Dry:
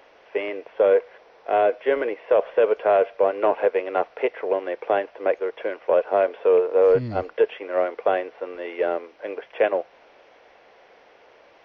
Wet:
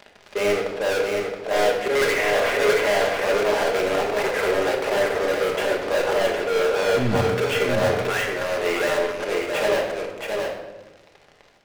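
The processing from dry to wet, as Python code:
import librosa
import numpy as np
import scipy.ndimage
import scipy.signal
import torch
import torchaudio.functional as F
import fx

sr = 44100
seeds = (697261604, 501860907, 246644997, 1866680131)

y = fx.peak_eq(x, sr, hz=2000.0, db=14.5, octaves=1.8, at=(1.95, 2.79))
y = fx.highpass(y, sr, hz=1100.0, slope=24, at=(8.07, 8.58))
y = fx.auto_swell(y, sr, attack_ms=117.0)
y = fx.leveller(y, sr, passes=5)
y = fx.rider(y, sr, range_db=5, speed_s=0.5)
y = np.clip(y, -10.0 ** (-16.0 / 20.0), 10.0 ** (-16.0 / 20.0))
y = y + 10.0 ** (-4.5 / 20.0) * np.pad(y, (int(673 * sr / 1000.0), 0))[:len(y)]
y = fx.room_shoebox(y, sr, seeds[0], volume_m3=630.0, walls='mixed', distance_m=1.3)
y = y * 10.0 ** (-6.5 / 20.0)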